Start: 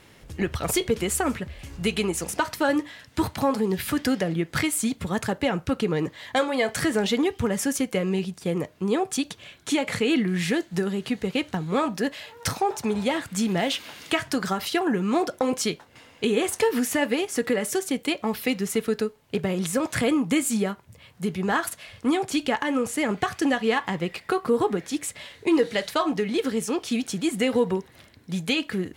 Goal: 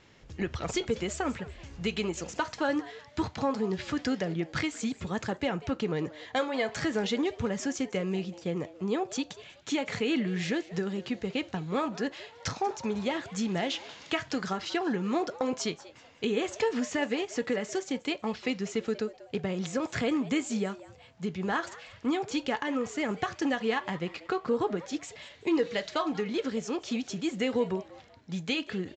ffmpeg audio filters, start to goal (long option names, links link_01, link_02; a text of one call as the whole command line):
ffmpeg -i in.wav -filter_complex "[0:a]aresample=16000,aresample=44100,asplit=4[link_01][link_02][link_03][link_04];[link_02]adelay=189,afreqshift=150,volume=-18.5dB[link_05];[link_03]adelay=378,afreqshift=300,volume=-29dB[link_06];[link_04]adelay=567,afreqshift=450,volume=-39.4dB[link_07];[link_01][link_05][link_06][link_07]amix=inputs=4:normalize=0,volume=-6dB" out.wav